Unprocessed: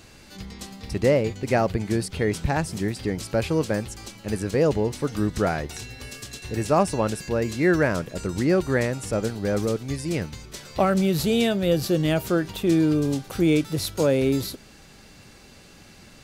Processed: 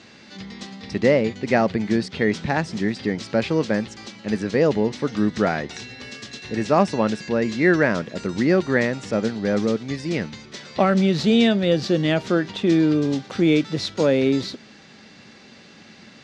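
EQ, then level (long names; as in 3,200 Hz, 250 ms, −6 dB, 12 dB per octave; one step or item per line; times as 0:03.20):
loudspeaker in its box 150–6,000 Hz, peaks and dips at 220 Hz +6 dB, 1,900 Hz +5 dB, 3,600 Hz +3 dB
+2.0 dB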